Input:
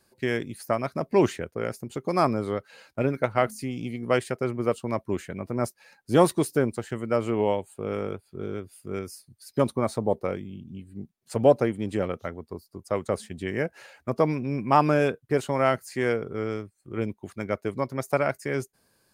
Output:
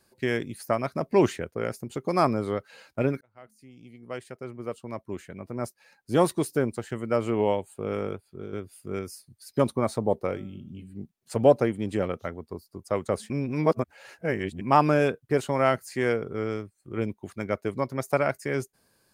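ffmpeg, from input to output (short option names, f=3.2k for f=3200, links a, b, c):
-filter_complex "[0:a]asplit=3[a][b][c];[a]afade=t=out:st=10.25:d=0.02[d];[b]bandreject=f=190.1:t=h:w=4,bandreject=f=380.2:t=h:w=4,bandreject=f=570.3:t=h:w=4,bandreject=f=760.4:t=h:w=4,bandreject=f=950.5:t=h:w=4,bandreject=f=1.1406k:t=h:w=4,bandreject=f=1.3307k:t=h:w=4,bandreject=f=1.5208k:t=h:w=4,bandreject=f=1.7109k:t=h:w=4,bandreject=f=1.901k:t=h:w=4,bandreject=f=2.0911k:t=h:w=4,bandreject=f=2.2812k:t=h:w=4,bandreject=f=2.4713k:t=h:w=4,bandreject=f=2.6614k:t=h:w=4,bandreject=f=2.8515k:t=h:w=4,bandreject=f=3.0416k:t=h:w=4,bandreject=f=3.2317k:t=h:w=4,bandreject=f=3.4218k:t=h:w=4,bandreject=f=3.6119k:t=h:w=4,bandreject=f=3.802k:t=h:w=4,bandreject=f=3.9921k:t=h:w=4,bandreject=f=4.1822k:t=h:w=4,bandreject=f=4.3723k:t=h:w=4,bandreject=f=4.5624k:t=h:w=4,bandreject=f=4.7525k:t=h:w=4,bandreject=f=4.9426k:t=h:w=4,bandreject=f=5.1327k:t=h:w=4,bandreject=f=5.3228k:t=h:w=4,bandreject=f=5.5129k:t=h:w=4,bandreject=f=5.703k:t=h:w=4,bandreject=f=5.8931k:t=h:w=4,afade=t=in:st=10.25:d=0.02,afade=t=out:st=11.01:d=0.02[e];[c]afade=t=in:st=11.01:d=0.02[f];[d][e][f]amix=inputs=3:normalize=0,asplit=5[g][h][i][j][k];[g]atrim=end=3.21,asetpts=PTS-STARTPTS,afade=t=out:st=3.206:d=0.004:c=hsin[l];[h]atrim=start=3.21:end=8.53,asetpts=PTS-STARTPTS,afade=t=in:d=4.16,afade=t=out:st=4.87:d=0.45:silence=0.473151[m];[i]atrim=start=8.53:end=13.302,asetpts=PTS-STARTPTS,afade=t=in:d=0.004:c=hsin:silence=0.473151[n];[j]atrim=start=13.298:end=14.612,asetpts=PTS-STARTPTS,areverse[o];[k]atrim=start=14.608[p];[l][m][n]concat=n=3:v=0:a=1[q];[q][o]acrossfade=d=0.004:c1=hsin:c2=hsin[r];[r][p]acrossfade=d=0.004:c1=hsin:c2=hsin"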